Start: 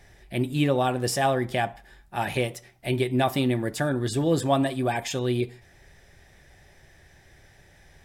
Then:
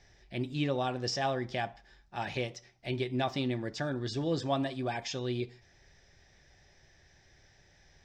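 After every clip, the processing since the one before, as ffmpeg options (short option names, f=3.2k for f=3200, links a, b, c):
-filter_complex "[0:a]highshelf=f=7.9k:t=q:w=3:g=-14,acrossover=split=7800[a][b];[b]acompressor=threshold=-59dB:ratio=4:attack=1:release=60[c];[a][c]amix=inputs=2:normalize=0,volume=-8.5dB"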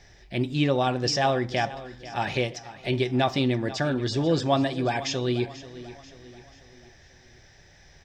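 -af "aecho=1:1:488|976|1464|1952:0.158|0.0745|0.035|0.0165,volume=8dB"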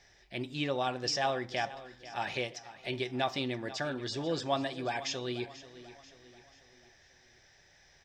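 -af "lowshelf=f=340:g=-10,volume=-5.5dB"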